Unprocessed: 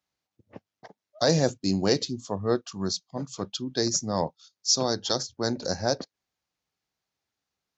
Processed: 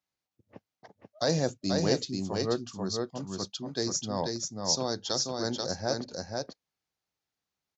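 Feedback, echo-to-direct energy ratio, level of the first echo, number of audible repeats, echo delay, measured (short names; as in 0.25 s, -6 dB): no steady repeat, -3.5 dB, -3.5 dB, 1, 0.486 s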